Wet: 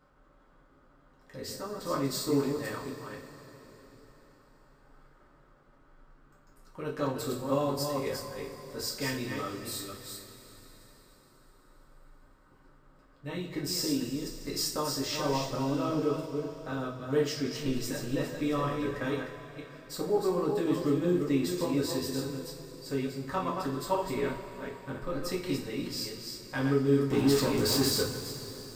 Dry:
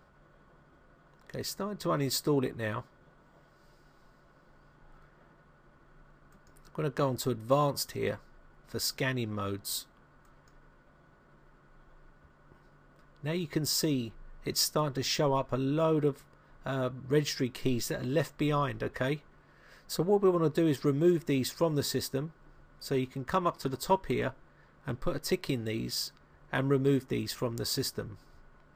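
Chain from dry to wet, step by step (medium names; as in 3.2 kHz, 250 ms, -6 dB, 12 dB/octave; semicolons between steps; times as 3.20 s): chunks repeated in reverse 242 ms, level -5 dB; 27.10–28.03 s: waveshaping leveller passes 3; two-slope reverb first 0.35 s, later 4.4 s, from -18 dB, DRR -4.5 dB; trim -8 dB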